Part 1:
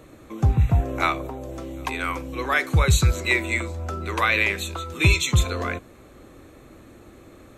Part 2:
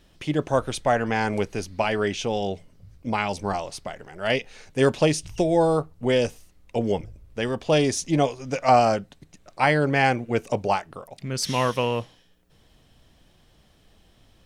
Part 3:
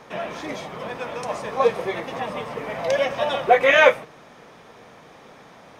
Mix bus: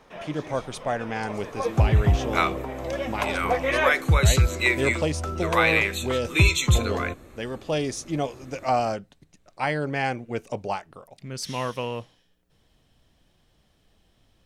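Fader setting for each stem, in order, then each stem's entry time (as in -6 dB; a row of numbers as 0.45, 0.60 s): -0.5, -6.0, -9.5 dB; 1.35, 0.00, 0.00 s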